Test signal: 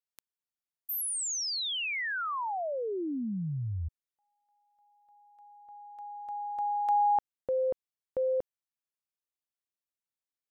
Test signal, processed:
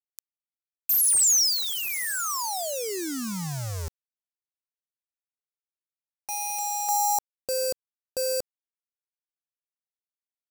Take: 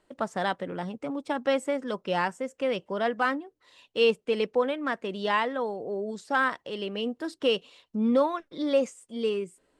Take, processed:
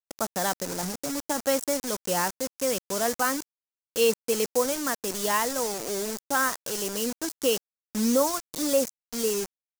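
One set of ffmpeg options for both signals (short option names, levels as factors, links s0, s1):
-af "acrusher=bits=5:mix=0:aa=0.000001,highshelf=f=4400:t=q:w=1.5:g=10,anlmdn=0.158"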